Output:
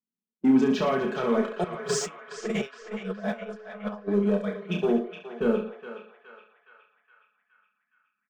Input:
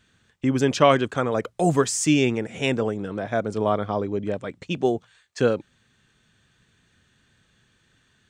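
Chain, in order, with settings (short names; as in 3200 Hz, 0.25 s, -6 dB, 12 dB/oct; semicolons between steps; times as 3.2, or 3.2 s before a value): treble ducked by the level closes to 2100 Hz, closed at -15.5 dBFS; limiter -13 dBFS, peak gain reduction 9 dB; elliptic band-pass 210–9800 Hz; low shelf 280 Hz +11.5 dB; comb 4.7 ms, depth 61%; low-pass opened by the level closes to 370 Hz, open at -18.5 dBFS; sample leveller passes 1; reverse bouncing-ball echo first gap 30 ms, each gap 1.25×, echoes 5; 1.64–4.08 negative-ratio compressor -23 dBFS, ratio -0.5; spectral noise reduction 25 dB; narrowing echo 0.417 s, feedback 63%, band-pass 1800 Hz, level -7 dB; gain -8.5 dB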